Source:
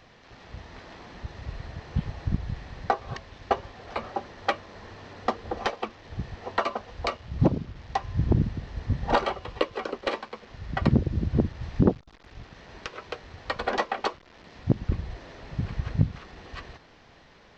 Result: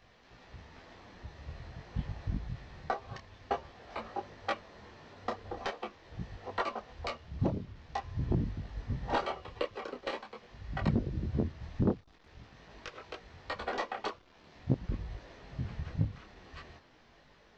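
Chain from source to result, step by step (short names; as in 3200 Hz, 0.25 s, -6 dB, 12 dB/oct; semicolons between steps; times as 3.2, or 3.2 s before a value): 14.11–14.51 notch 1900 Hz, Q 11; detuned doubles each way 16 cents; gain -4 dB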